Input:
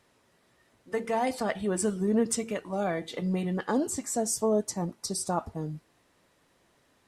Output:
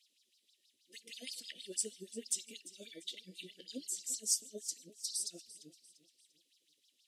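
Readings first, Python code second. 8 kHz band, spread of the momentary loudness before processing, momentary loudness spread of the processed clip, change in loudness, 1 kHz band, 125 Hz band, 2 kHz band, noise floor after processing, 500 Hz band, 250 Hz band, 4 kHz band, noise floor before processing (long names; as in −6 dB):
−3.0 dB, 8 LU, 19 LU, −9.5 dB, below −40 dB, below −25 dB, −17.0 dB, −78 dBFS, −23.0 dB, −23.5 dB, −0.5 dB, −68 dBFS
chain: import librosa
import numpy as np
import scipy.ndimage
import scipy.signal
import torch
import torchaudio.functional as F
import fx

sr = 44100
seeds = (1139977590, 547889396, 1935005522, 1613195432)

p1 = fx.filter_lfo_highpass(x, sr, shape='sine', hz=6.3, low_hz=540.0, high_hz=5200.0, q=5.2)
p2 = scipy.signal.sosfilt(scipy.signal.ellip(3, 1.0, 80, [310.0, 3100.0], 'bandstop', fs=sr, output='sos'), p1)
p3 = np.clip(10.0 ** (19.0 / 20.0) * p2, -1.0, 1.0) / 10.0 ** (19.0 / 20.0)
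p4 = p2 + (p3 * 10.0 ** (-4.0 / 20.0))
p5 = fx.echo_feedback(p4, sr, ms=345, feedback_pct=40, wet_db=-17.0)
y = p5 * 10.0 ** (-8.0 / 20.0)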